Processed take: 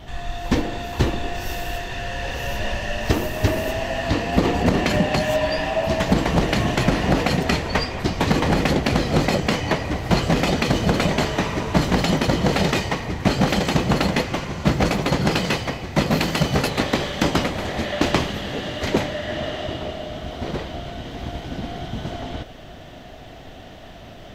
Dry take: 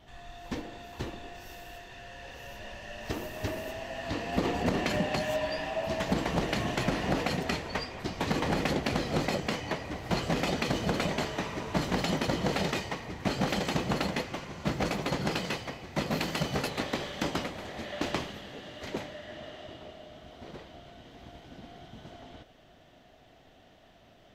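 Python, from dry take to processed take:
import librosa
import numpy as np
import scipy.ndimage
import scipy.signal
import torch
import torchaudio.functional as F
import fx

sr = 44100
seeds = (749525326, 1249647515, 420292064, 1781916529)

p1 = fx.low_shelf(x, sr, hz=130.0, db=6.5)
p2 = fx.rider(p1, sr, range_db=10, speed_s=0.5)
p3 = p1 + (p2 * 10.0 ** (0.5 / 20.0))
y = p3 * 10.0 ** (3.5 / 20.0)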